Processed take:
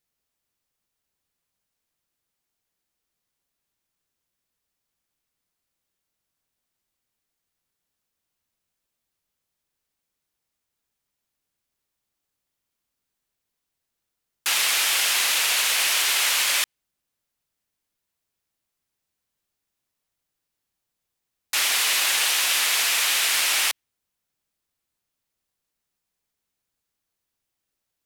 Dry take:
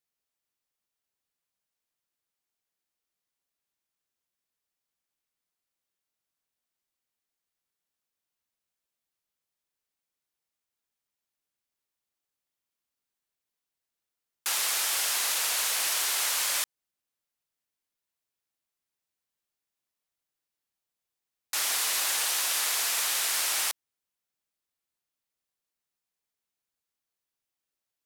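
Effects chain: bass shelf 230 Hz +7.5 dB; in parallel at +2.5 dB: peak limiter -22.5 dBFS, peak gain reduction 7.5 dB; on the sum: dynamic bell 2.6 kHz, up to +8 dB, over -41 dBFS, Q 0.94; trim -2 dB

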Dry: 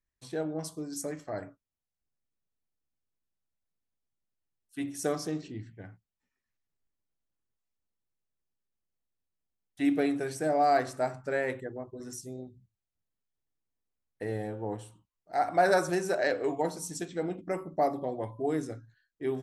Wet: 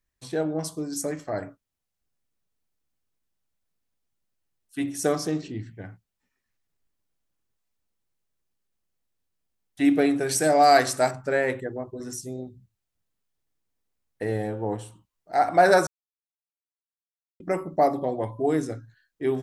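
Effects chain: 10.29–11.11 s: treble shelf 2.3 kHz +12 dB; 15.87–17.40 s: mute; trim +6.5 dB

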